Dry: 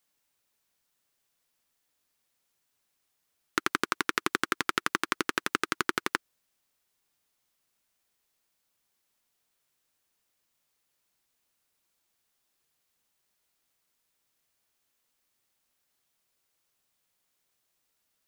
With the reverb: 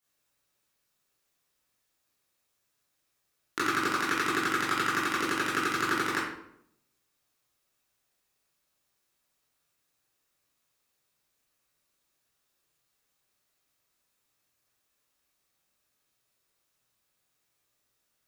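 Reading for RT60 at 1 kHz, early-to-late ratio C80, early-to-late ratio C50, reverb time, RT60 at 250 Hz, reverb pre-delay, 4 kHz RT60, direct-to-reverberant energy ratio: 0.70 s, 5.0 dB, 1.0 dB, 0.75 s, 0.85 s, 17 ms, 0.50 s, −9.5 dB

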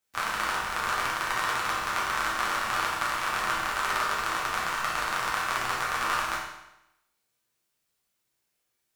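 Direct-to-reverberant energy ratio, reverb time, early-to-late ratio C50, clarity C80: −6.5 dB, 0.85 s, 2.0 dB, 4.5 dB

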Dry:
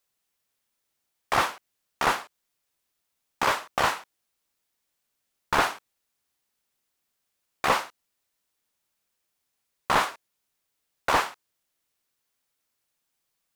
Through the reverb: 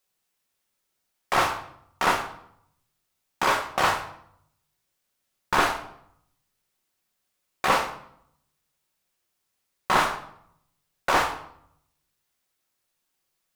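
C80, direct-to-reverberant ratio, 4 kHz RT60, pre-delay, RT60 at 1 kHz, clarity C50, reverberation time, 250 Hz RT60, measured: 12.5 dB, 3.0 dB, 0.55 s, 5 ms, 0.70 s, 9.0 dB, 0.70 s, 0.90 s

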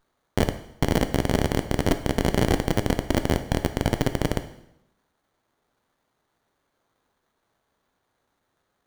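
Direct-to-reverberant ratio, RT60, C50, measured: 8.5 dB, 0.85 s, 11.5 dB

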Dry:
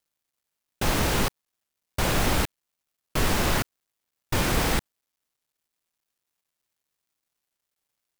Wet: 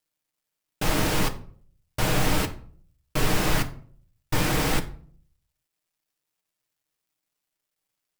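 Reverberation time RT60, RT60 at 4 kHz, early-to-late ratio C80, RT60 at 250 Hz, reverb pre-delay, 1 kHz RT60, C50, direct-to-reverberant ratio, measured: 0.50 s, 0.35 s, 19.5 dB, 0.65 s, 6 ms, 0.45 s, 15.0 dB, 4.5 dB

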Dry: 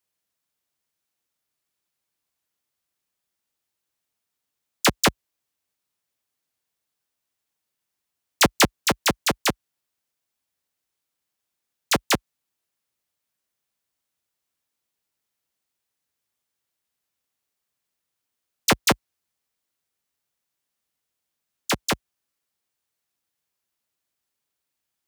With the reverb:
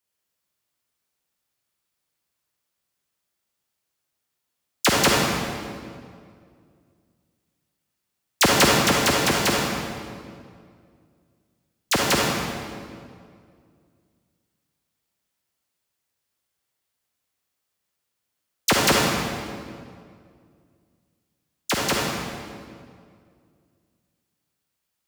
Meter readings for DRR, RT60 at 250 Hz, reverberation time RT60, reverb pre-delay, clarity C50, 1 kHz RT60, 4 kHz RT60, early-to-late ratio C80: −2.5 dB, 2.5 s, 2.2 s, 39 ms, −1.5 dB, 2.0 s, 1.5 s, 0.5 dB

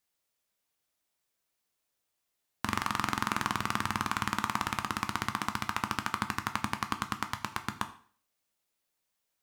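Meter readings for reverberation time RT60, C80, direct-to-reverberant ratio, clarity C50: 0.45 s, 17.0 dB, 7.5 dB, 14.0 dB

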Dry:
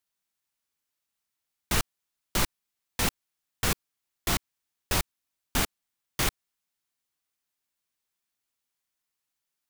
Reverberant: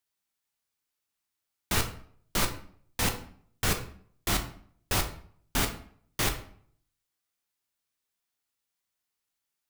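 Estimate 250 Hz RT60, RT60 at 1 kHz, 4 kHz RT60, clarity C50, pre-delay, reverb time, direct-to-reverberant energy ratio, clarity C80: 0.60 s, 0.55 s, 0.40 s, 10.0 dB, 9 ms, 0.55 s, 4.5 dB, 14.0 dB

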